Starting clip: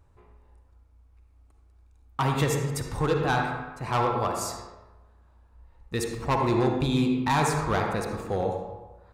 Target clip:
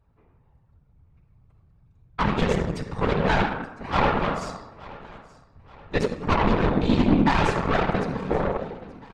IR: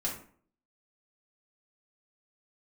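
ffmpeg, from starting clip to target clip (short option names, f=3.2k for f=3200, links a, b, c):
-filter_complex "[0:a]asplit=2[a][b];[1:a]atrim=start_sample=2205,adelay=8[c];[b][c]afir=irnorm=-1:irlink=0,volume=-15dB[d];[a][d]amix=inputs=2:normalize=0,aeval=exprs='0.266*(cos(1*acos(clip(val(0)/0.266,-1,1)))-cos(1*PI/2))+0.119*(cos(5*acos(clip(val(0)/0.266,-1,1)))-cos(5*PI/2))+0.0944*(cos(6*acos(clip(val(0)/0.266,-1,1)))-cos(6*PI/2))':c=same,aecho=1:1:4.5:0.6,afftfilt=real='hypot(re,im)*cos(2*PI*random(0))':imag='hypot(re,im)*sin(2*PI*random(1))':win_size=512:overlap=0.75,aeval=exprs='0.447*(cos(1*acos(clip(val(0)/0.447,-1,1)))-cos(1*PI/2))+0.0126*(cos(2*acos(clip(val(0)/0.447,-1,1)))-cos(2*PI/2))+0.00631*(cos(4*acos(clip(val(0)/0.447,-1,1)))-cos(4*PI/2))+0.0562*(cos(5*acos(clip(val(0)/0.447,-1,1)))-cos(5*PI/2))+0.0708*(cos(7*acos(clip(val(0)/0.447,-1,1)))-cos(7*PI/2))':c=same,aecho=1:1:876|1752|2628:0.0944|0.0406|0.0175,dynaudnorm=f=240:g=7:m=4dB,adynamicequalizer=threshold=0.0141:dfrequency=180:dqfactor=2.5:tfrequency=180:tqfactor=2.5:attack=5:release=100:ratio=0.375:range=2.5:mode=boostabove:tftype=bell,lowpass=3.7k,volume=-4.5dB"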